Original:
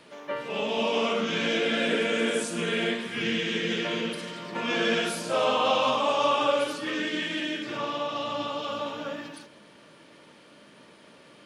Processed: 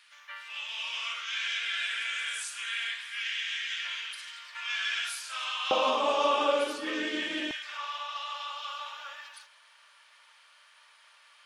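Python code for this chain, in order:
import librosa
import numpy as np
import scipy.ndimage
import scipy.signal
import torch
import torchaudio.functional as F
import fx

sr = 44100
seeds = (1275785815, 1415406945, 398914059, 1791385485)

y = fx.highpass(x, sr, hz=fx.steps((0.0, 1400.0), (5.71, 260.0), (7.51, 1000.0)), slope=24)
y = y * 10.0 ** (-2.0 / 20.0)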